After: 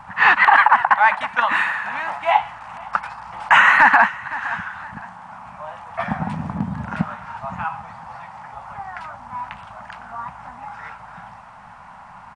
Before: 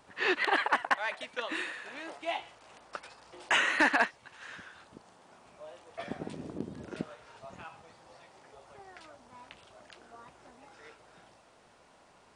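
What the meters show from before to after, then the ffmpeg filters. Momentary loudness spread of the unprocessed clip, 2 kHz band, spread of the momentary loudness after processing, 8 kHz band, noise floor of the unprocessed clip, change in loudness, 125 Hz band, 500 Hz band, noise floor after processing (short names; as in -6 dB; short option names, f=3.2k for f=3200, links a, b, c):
23 LU, +15.0 dB, 24 LU, n/a, -61 dBFS, +14.0 dB, +19.5 dB, +7.5 dB, -42 dBFS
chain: -af "firequalizer=gain_entry='entry(200,0);entry(350,-28);entry(840,5);entry(3600,-15);entry(10000,-17)':delay=0.05:min_phase=1,aecho=1:1:512|1024:0.0794|0.027,alimiter=level_in=20.5dB:limit=-1dB:release=50:level=0:latency=1,volume=-1dB"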